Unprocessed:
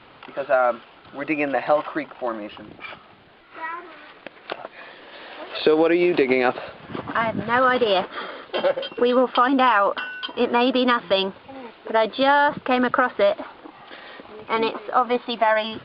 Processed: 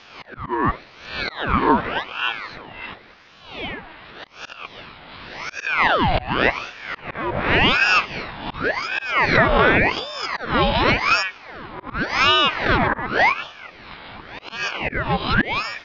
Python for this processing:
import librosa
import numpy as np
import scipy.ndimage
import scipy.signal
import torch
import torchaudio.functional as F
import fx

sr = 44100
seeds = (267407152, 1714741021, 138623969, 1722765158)

y = fx.spec_swells(x, sr, rise_s=0.65)
y = fx.dynamic_eq(y, sr, hz=700.0, q=6.8, threshold_db=-36.0, ratio=4.0, max_db=6)
y = fx.auto_swell(y, sr, attack_ms=248.0)
y = fx.ring_lfo(y, sr, carrier_hz=1200.0, swing_pct=75, hz=0.89)
y = F.gain(torch.from_numpy(y), 2.5).numpy()